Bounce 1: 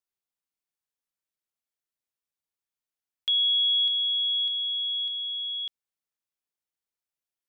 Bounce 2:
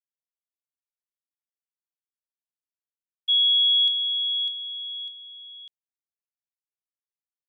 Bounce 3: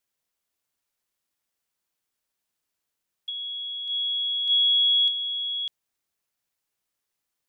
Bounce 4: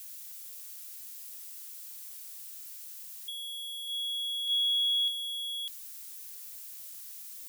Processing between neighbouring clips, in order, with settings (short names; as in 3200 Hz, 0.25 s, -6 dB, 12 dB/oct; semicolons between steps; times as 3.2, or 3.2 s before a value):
expander -22 dBFS; high shelf 3400 Hz +10.5 dB
negative-ratio compressor -33 dBFS, ratio -1; gain +6.5 dB
switching spikes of -31 dBFS; gain -7.5 dB